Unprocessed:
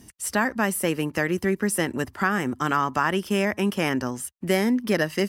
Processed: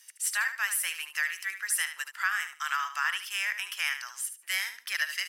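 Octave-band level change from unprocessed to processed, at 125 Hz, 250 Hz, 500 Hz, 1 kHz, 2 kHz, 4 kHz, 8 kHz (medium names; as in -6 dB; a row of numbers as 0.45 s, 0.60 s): under -40 dB, under -40 dB, under -35 dB, -9.5 dB, -1.0 dB, +0.5 dB, +0.5 dB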